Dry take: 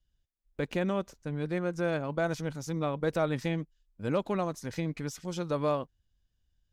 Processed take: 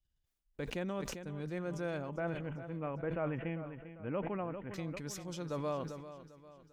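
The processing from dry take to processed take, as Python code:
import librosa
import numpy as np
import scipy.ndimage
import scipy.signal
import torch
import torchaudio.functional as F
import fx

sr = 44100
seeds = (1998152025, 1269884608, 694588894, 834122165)

y = fx.steep_lowpass(x, sr, hz=3000.0, slope=96, at=(2.09, 4.74))
y = fx.echo_feedback(y, sr, ms=397, feedback_pct=45, wet_db=-13.5)
y = fx.sustainer(y, sr, db_per_s=42.0)
y = y * 10.0 ** (-8.5 / 20.0)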